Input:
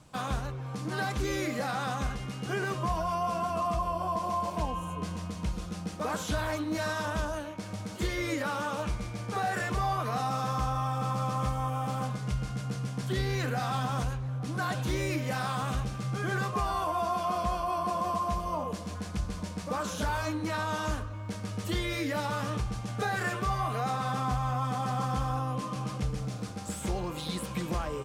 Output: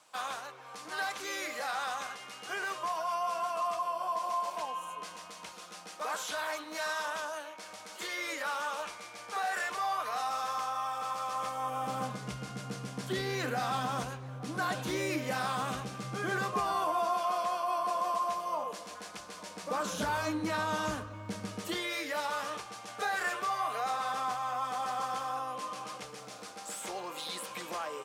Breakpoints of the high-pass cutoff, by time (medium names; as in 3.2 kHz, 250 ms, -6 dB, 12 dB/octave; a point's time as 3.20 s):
11.29 s 730 Hz
12.01 s 220 Hz
16.76 s 220 Hz
17.28 s 530 Hz
19.46 s 530 Hz
20.06 s 150 Hz
21.43 s 150 Hz
21.92 s 560 Hz